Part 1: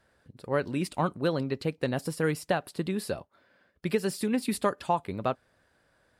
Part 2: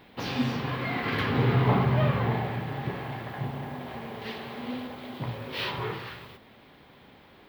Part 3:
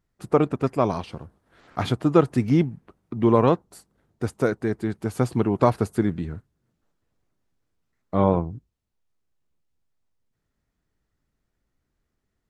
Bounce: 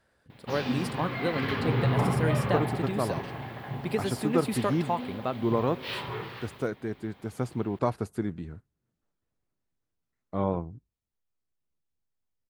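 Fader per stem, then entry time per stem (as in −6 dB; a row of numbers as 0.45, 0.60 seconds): −2.5, −3.0, −8.5 decibels; 0.00, 0.30, 2.20 seconds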